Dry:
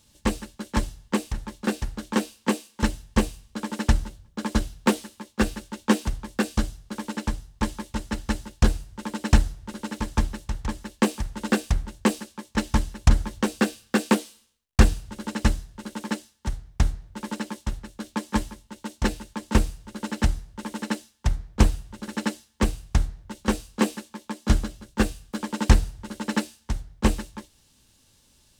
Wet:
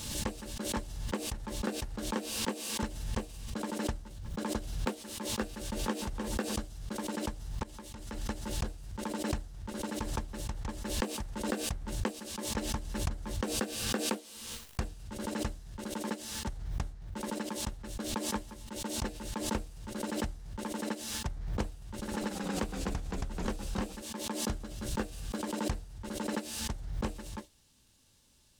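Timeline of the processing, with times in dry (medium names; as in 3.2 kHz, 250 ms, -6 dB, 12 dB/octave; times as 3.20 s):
5.42–5.98 s: echo throw 300 ms, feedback 15%, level -10.5 dB
7.63–8.26 s: compression, threshold -38 dBFS
21.81–24.02 s: ever faster or slower copies 206 ms, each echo -1 st, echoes 3
whole clip: compression 4:1, threshold -29 dBFS; dynamic bell 570 Hz, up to +5 dB, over -48 dBFS, Q 0.82; swell ahead of each attack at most 43 dB/s; trim -6 dB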